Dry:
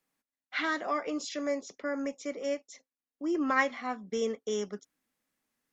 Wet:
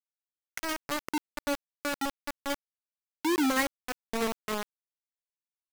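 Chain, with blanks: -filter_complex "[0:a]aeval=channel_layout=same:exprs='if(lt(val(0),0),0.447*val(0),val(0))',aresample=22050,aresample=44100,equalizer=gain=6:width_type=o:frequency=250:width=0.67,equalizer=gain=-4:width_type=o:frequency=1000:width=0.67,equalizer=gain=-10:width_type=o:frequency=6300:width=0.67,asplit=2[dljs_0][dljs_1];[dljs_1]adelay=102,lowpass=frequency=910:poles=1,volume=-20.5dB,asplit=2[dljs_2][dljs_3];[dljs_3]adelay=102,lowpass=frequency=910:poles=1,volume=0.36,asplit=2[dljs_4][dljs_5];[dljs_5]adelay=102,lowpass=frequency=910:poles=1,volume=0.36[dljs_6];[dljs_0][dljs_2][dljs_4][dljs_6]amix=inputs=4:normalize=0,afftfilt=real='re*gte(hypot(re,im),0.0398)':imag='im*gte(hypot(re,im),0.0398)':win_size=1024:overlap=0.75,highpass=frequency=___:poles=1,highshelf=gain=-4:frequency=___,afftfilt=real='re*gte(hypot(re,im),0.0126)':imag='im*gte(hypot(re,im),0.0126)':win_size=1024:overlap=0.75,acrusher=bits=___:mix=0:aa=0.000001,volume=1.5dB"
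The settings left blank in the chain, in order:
110, 4200, 4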